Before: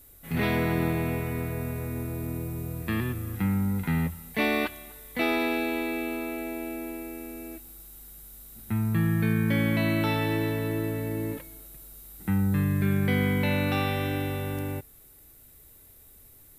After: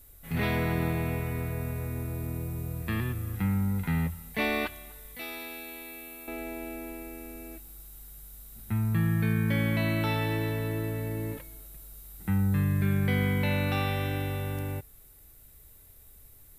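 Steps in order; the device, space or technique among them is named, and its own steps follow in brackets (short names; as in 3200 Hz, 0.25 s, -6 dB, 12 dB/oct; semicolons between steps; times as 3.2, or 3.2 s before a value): low shelf boost with a cut just above (low shelf 76 Hz +7.5 dB; bell 290 Hz -4 dB 0.99 oct); 5.15–6.28 pre-emphasis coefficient 0.8; gain -2 dB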